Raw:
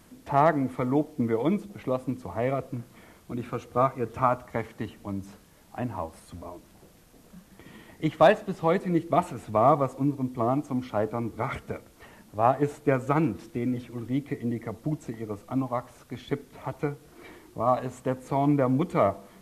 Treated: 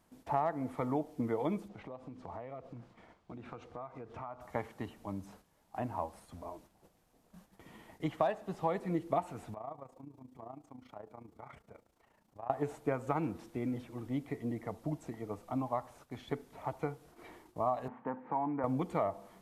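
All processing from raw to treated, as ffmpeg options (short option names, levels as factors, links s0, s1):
-filter_complex "[0:a]asettb=1/sr,asplit=3[s0][s1][s2];[s0]atrim=end=1.684[s3];[s1]atrim=start=1.68:end=4.41,asetpts=PTS-STARTPTS,afade=t=in:d=0.004:c=qsin,afade=t=out:st=2.726:d=0.004:c=qsin,lowpass=4700,acompressor=threshold=0.0178:ratio=12:attack=3.2:release=140:knee=1:detection=peak[s4];[s2]atrim=start=4.406[s5];[s3][s4]acrossfade=d=0.004:c1=hsin:c2=qsin[s6];[s6][s5]acrossfade=d=0.004:c1=qsin:c2=hsin,asettb=1/sr,asplit=3[s7][s8][s9];[s7]atrim=end=9.544[s10];[s8]atrim=start=9.54:end=12.5,asetpts=PTS-STARTPTS,afade=t=in:d=0.004:c=qsin,afade=t=out:st=2.956:d=0.004:c=qsin,equalizer=f=11000:t=o:w=0.27:g=-4,acompressor=threshold=0.00355:ratio=2:attack=3.2:release=140:knee=1:detection=peak,tremolo=f=28:d=0.71[s11];[s9]atrim=start=12.496[s12];[s10][s11]acrossfade=d=0.004:c1=hsin:c2=qsin[s13];[s13][s12]acrossfade=d=0.004:c1=qsin:c2=hsin,asettb=1/sr,asplit=3[s14][s15][s16];[s14]atrim=end=17.884[s17];[s15]atrim=start=17.88:end=18.64,asetpts=PTS-STARTPTS,afade=t=in:d=0.004:c=qsin,afade=t=out:st=0.756:d=0.004:c=qsin,acompressor=threshold=0.0631:ratio=4:attack=3.2:release=140:knee=1:detection=peak,highpass=200,equalizer=f=230:t=q:w=4:g=7,equalizer=f=400:t=q:w=4:g=-4,equalizer=f=630:t=q:w=4:g=-6,equalizer=f=890:t=q:w=4:g=7,equalizer=f=1700:t=q:w=4:g=3,lowpass=f=2100:w=0.5412,lowpass=f=2100:w=1.3066[s18];[s16]atrim=start=18.636[s19];[s17][s18]acrossfade=d=0.004:c1=hsin:c2=qsin[s20];[s20][s19]acrossfade=d=0.004:c1=qsin:c2=hsin,agate=range=0.398:threshold=0.00282:ratio=16:detection=peak,equalizer=f=810:t=o:w=0.99:g=7,acompressor=threshold=0.1:ratio=6,volume=0.398"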